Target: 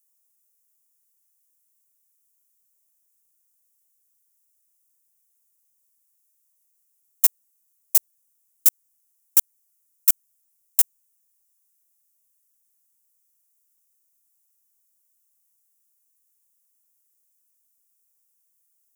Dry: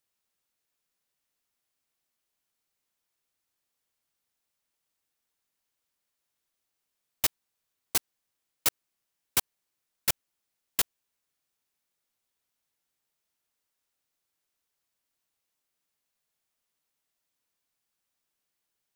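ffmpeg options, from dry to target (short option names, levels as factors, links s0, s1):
-af "aexciter=amount=3.8:drive=9.9:freq=5900,volume=0.447"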